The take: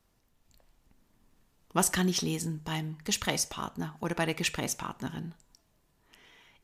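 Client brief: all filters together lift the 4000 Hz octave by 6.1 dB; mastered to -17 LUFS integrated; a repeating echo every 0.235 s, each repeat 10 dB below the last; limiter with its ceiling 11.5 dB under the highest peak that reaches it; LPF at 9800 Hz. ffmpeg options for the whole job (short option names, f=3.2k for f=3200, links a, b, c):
-af "lowpass=9.8k,equalizer=f=4k:t=o:g=8.5,alimiter=limit=-19dB:level=0:latency=1,aecho=1:1:235|470|705|940:0.316|0.101|0.0324|0.0104,volume=14.5dB"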